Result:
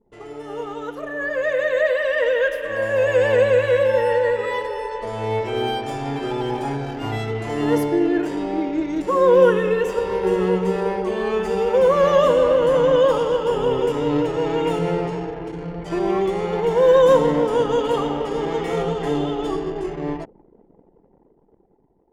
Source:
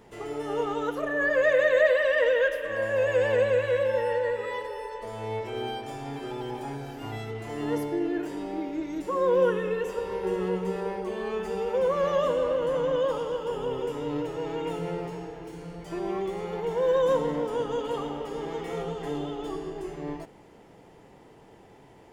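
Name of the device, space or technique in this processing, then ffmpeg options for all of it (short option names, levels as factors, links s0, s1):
voice memo with heavy noise removal: -af "anlmdn=0.0251,dynaudnorm=f=720:g=7:m=5.01,volume=0.841"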